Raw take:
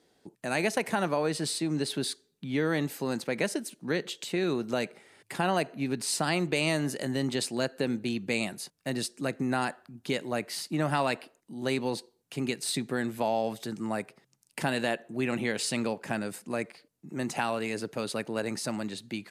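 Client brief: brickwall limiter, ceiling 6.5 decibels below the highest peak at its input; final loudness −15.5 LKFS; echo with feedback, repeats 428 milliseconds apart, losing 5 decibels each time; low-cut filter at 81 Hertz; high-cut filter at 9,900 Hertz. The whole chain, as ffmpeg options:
ffmpeg -i in.wav -af "highpass=81,lowpass=9900,alimiter=limit=-20dB:level=0:latency=1,aecho=1:1:428|856|1284|1712|2140|2568|2996:0.562|0.315|0.176|0.0988|0.0553|0.031|0.0173,volume=16dB" out.wav

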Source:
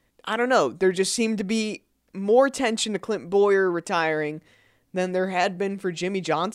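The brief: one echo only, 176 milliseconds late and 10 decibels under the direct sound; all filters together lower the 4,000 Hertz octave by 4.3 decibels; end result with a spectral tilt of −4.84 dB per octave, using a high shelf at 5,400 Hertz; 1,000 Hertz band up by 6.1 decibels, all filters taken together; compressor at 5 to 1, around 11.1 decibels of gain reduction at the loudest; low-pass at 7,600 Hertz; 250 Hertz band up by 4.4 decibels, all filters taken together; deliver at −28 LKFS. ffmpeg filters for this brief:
ffmpeg -i in.wav -af "lowpass=7600,equalizer=frequency=250:width_type=o:gain=5.5,equalizer=frequency=1000:width_type=o:gain=8.5,equalizer=frequency=4000:width_type=o:gain=-4.5,highshelf=frequency=5400:gain=-3.5,acompressor=threshold=-21dB:ratio=5,aecho=1:1:176:0.316,volume=-2dB" out.wav

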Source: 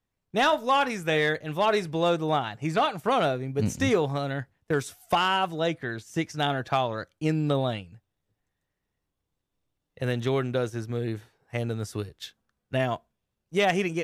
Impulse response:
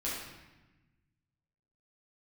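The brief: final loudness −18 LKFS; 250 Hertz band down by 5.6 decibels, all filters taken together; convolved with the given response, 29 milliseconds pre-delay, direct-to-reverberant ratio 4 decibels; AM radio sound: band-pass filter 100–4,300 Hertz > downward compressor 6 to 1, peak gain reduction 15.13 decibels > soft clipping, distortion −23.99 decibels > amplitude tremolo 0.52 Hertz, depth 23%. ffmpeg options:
-filter_complex "[0:a]equalizer=frequency=250:width_type=o:gain=-8,asplit=2[link_01][link_02];[1:a]atrim=start_sample=2205,adelay=29[link_03];[link_02][link_03]afir=irnorm=-1:irlink=0,volume=-8.5dB[link_04];[link_01][link_04]amix=inputs=2:normalize=0,highpass=100,lowpass=4300,acompressor=threshold=-34dB:ratio=6,asoftclip=threshold=-25dB,tremolo=f=0.52:d=0.23,volume=21.5dB"

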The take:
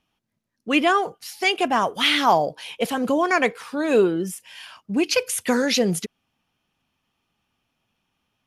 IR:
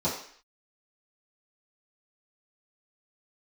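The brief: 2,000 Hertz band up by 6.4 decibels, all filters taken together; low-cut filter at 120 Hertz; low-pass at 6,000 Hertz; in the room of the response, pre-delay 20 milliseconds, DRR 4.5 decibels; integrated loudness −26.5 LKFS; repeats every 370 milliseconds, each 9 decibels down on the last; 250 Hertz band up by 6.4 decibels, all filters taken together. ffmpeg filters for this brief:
-filter_complex "[0:a]highpass=120,lowpass=6000,equalizer=frequency=250:width_type=o:gain=8,equalizer=frequency=2000:width_type=o:gain=8,aecho=1:1:370|740|1110|1480:0.355|0.124|0.0435|0.0152,asplit=2[link_01][link_02];[1:a]atrim=start_sample=2205,adelay=20[link_03];[link_02][link_03]afir=irnorm=-1:irlink=0,volume=-14.5dB[link_04];[link_01][link_04]amix=inputs=2:normalize=0,volume=-12dB"

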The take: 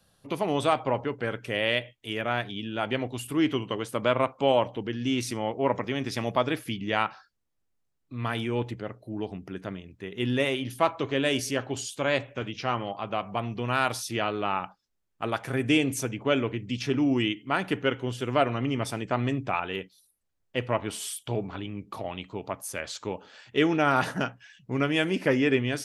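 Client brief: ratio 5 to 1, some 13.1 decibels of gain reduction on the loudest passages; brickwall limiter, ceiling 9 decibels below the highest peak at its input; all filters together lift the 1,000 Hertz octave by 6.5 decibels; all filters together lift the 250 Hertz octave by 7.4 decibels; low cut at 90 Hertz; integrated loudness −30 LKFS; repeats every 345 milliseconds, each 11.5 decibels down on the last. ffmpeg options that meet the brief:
ffmpeg -i in.wav -af "highpass=90,equalizer=frequency=250:width_type=o:gain=8.5,equalizer=frequency=1000:width_type=o:gain=8,acompressor=threshold=-28dB:ratio=5,alimiter=limit=-22dB:level=0:latency=1,aecho=1:1:345|690|1035:0.266|0.0718|0.0194,volume=4dB" out.wav

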